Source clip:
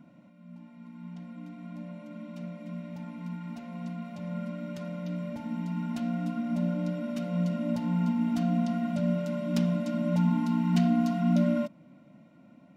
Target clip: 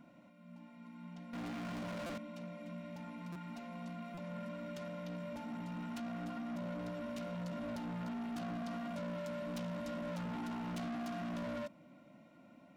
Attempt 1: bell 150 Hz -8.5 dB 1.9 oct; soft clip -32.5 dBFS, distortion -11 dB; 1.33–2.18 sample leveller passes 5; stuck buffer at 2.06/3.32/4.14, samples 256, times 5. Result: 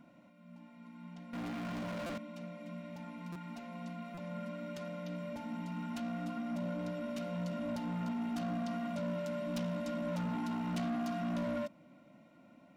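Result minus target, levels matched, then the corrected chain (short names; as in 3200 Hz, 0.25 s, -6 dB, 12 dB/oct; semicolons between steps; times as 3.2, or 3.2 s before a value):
soft clip: distortion -5 dB
bell 150 Hz -8.5 dB 1.9 oct; soft clip -39 dBFS, distortion -6 dB; 1.33–2.18 sample leveller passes 5; stuck buffer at 2.06/3.32/4.14, samples 256, times 5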